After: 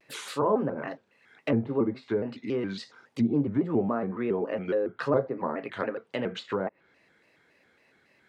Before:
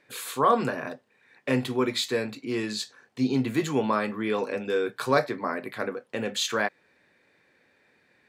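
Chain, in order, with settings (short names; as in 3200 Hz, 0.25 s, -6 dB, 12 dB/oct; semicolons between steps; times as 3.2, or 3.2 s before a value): treble ducked by the level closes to 710 Hz, closed at -23 dBFS; shaped vibrato square 3.6 Hz, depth 160 cents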